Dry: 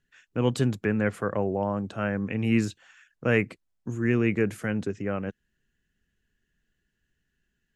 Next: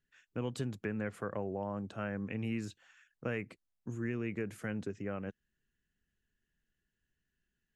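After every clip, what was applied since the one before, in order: compression, threshold -24 dBFS, peak gain reduction 7.5 dB; trim -8 dB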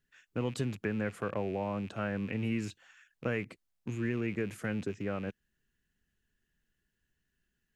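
rattle on loud lows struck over -50 dBFS, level -44 dBFS; trim +3.5 dB

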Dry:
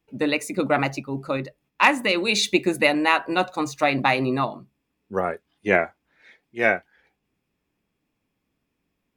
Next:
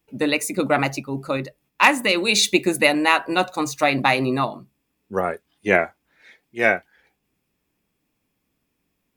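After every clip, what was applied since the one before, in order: treble shelf 6.9 kHz +10 dB; trim +1.5 dB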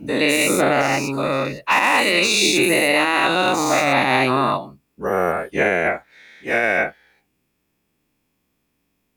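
every event in the spectrogram widened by 240 ms; peak limiter -4.5 dBFS, peak gain reduction 10.5 dB; trim -2.5 dB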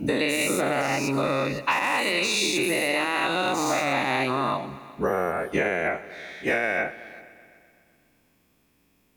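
compression 12:1, threshold -26 dBFS, peak gain reduction 14 dB; multi-head delay 126 ms, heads all three, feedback 44%, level -22.5 dB; trim +5 dB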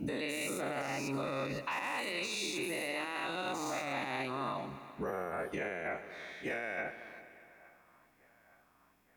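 peak limiter -20.5 dBFS, peak gain reduction 8.5 dB; band-passed feedback delay 868 ms, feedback 72%, band-pass 1.1 kHz, level -23 dB; trim -7.5 dB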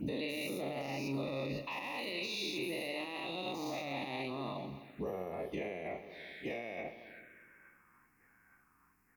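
touch-sensitive phaser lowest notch 580 Hz, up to 1.5 kHz, full sweep at -40.5 dBFS; doubling 43 ms -12.5 dB

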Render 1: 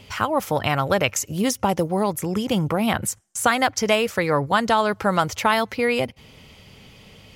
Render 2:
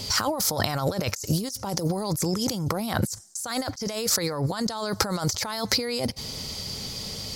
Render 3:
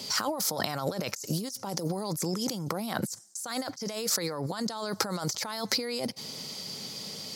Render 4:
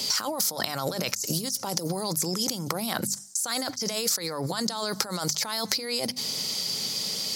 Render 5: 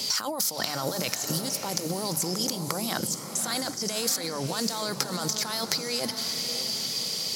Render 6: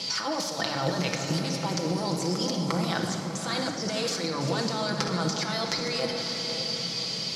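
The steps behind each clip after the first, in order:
resonant high shelf 3.6 kHz +9 dB, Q 3; compressor with a negative ratio -29 dBFS, ratio -1; trim +1 dB
high-pass 150 Hz 24 dB/octave; trim -4.5 dB
treble shelf 2.3 kHz +8 dB; hum notches 50/100/150/200/250 Hz; compression 6:1, threshold -27 dBFS, peak gain reduction 10.5 dB; trim +3.5 dB
echo that smears into a reverb 577 ms, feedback 40%, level -8 dB; trim -1 dB
chunks repeated in reverse 252 ms, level -10 dB; low-pass 4.4 kHz 12 dB/octave; on a send at -1.5 dB: reverberation RT60 1.9 s, pre-delay 6 ms

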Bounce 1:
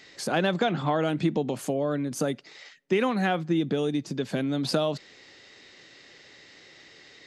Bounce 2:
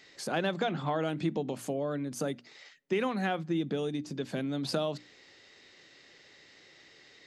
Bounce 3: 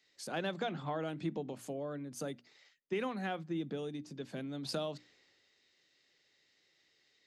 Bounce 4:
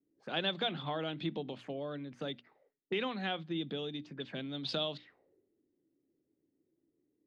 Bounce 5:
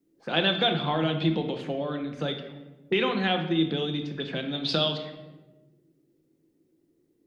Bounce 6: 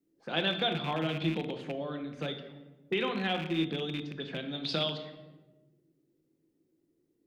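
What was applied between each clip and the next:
hum notches 60/120/180/240/300 Hz; trim -5.5 dB
three bands expanded up and down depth 40%; trim -7 dB
touch-sensitive low-pass 280–3500 Hz up, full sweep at -40 dBFS
simulated room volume 550 m³, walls mixed, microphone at 0.81 m; trim +9 dB
rattle on loud lows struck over -31 dBFS, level -24 dBFS; trim -6 dB

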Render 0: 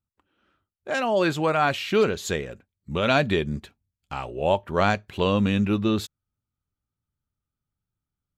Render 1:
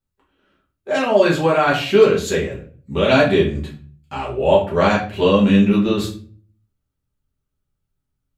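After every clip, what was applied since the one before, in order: hum notches 50/100/150/200 Hz; simulated room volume 36 m³, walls mixed, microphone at 1.2 m; trim -1.5 dB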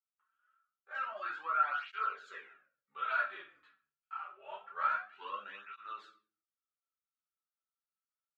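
ladder band-pass 1.4 kHz, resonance 80%; cancelling through-zero flanger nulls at 0.26 Hz, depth 5.8 ms; trim -6.5 dB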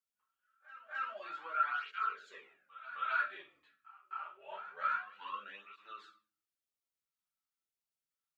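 LFO notch sine 0.92 Hz 390–1600 Hz; pre-echo 263 ms -15 dB

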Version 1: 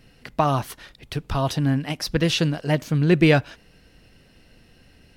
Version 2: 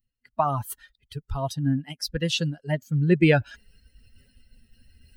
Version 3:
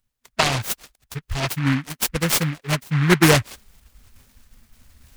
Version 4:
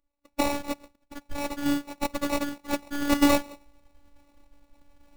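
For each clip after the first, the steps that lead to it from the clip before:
expander on every frequency bin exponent 2; reverse; upward compressor, threshold -28 dBFS; reverse
treble shelf 5.1 kHz +10.5 dB; delay time shaken by noise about 1.6 kHz, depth 0.24 ms; trim +3.5 dB
de-hum 180.5 Hz, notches 25; sample-rate reducer 1.6 kHz, jitter 0%; robot voice 286 Hz; trim -3 dB

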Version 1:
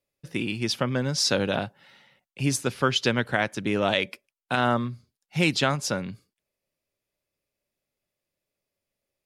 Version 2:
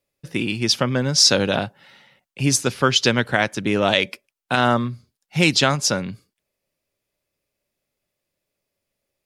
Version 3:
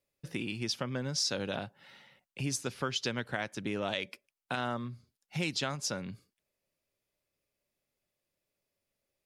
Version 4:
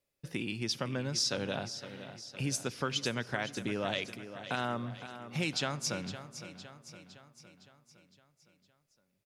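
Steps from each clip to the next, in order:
dynamic bell 5.8 kHz, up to +6 dB, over -40 dBFS, Q 1.1; trim +5 dB
compression 2:1, threshold -32 dBFS, peak gain reduction 12 dB; trim -6 dB
feedback delay 511 ms, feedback 54%, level -12 dB; on a send at -20.5 dB: reverberation RT60 2.9 s, pre-delay 58 ms

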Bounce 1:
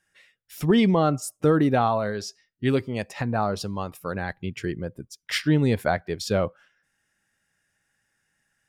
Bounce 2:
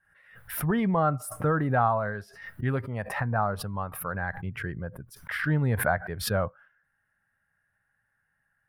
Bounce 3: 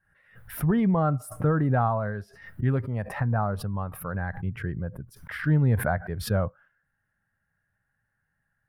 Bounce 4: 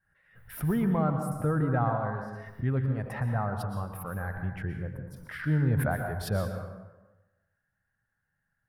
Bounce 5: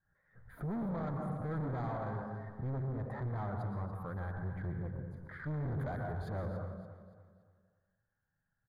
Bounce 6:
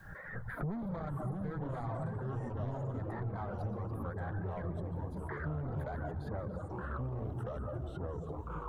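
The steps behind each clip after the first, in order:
FFT filter 120 Hz 0 dB, 340 Hz -12 dB, 630 Hz -3 dB, 1.6 kHz +2 dB, 2.4 kHz -12 dB, 7 kHz -27 dB, 10 kHz -9 dB; swell ahead of each attack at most 80 dB/s
bass shelf 480 Hz +9.5 dB; trim -4.5 dB
plate-style reverb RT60 1.1 s, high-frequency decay 0.6×, pre-delay 105 ms, DRR 5 dB; trim -4.5 dB
hard clipper -32.5 dBFS, distortion -5 dB; boxcar filter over 16 samples; feedback delay 285 ms, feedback 40%, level -13 dB; trim -2.5 dB
reverb removal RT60 1.8 s; ever faster or slower copies 493 ms, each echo -3 st, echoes 3; three bands compressed up and down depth 100%

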